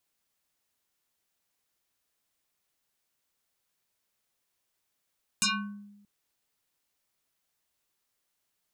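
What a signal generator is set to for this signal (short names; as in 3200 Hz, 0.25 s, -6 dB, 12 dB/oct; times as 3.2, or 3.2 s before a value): FM tone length 0.63 s, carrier 204 Hz, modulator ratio 6.42, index 7.7, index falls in 0.51 s exponential, decay 1.02 s, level -21 dB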